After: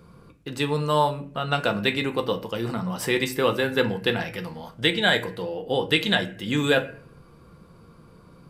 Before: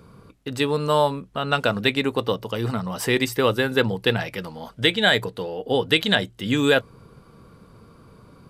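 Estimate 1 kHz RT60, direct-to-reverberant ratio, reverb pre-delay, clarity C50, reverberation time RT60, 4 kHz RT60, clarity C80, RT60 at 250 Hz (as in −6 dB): 0.40 s, 5.5 dB, 6 ms, 14.0 dB, 0.45 s, 0.35 s, 18.0 dB, 0.60 s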